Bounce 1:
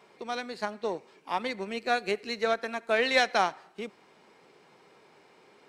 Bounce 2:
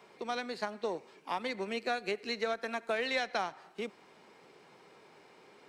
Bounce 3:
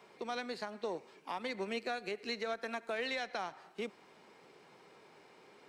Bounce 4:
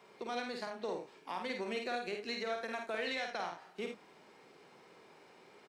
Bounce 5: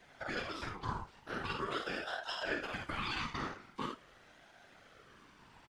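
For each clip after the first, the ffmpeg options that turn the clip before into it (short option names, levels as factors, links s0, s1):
-filter_complex "[0:a]acrossover=split=190|6400[s0][s1][s2];[s0]acompressor=threshold=0.00158:ratio=4[s3];[s1]acompressor=threshold=0.0282:ratio=4[s4];[s2]acompressor=threshold=0.001:ratio=4[s5];[s3][s4][s5]amix=inputs=3:normalize=0"
-af "alimiter=level_in=1.33:limit=0.0631:level=0:latency=1:release=114,volume=0.75,volume=0.841"
-af "aecho=1:1:50|79:0.596|0.355,volume=0.841"
-filter_complex "[0:a]asplit=2[s0][s1];[s1]adelay=31,volume=0.299[s2];[s0][s2]amix=inputs=2:normalize=0,afftfilt=real='hypot(re,im)*cos(2*PI*random(0))':imag='hypot(re,im)*sin(2*PI*random(1))':win_size=512:overlap=0.75,aeval=exprs='val(0)*sin(2*PI*810*n/s+810*0.4/0.44*sin(2*PI*0.44*n/s))':c=same,volume=2.51"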